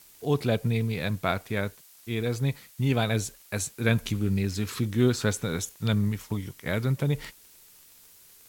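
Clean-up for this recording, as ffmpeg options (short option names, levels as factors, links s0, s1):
-af "adeclick=t=4,afftdn=nr=18:nf=-54"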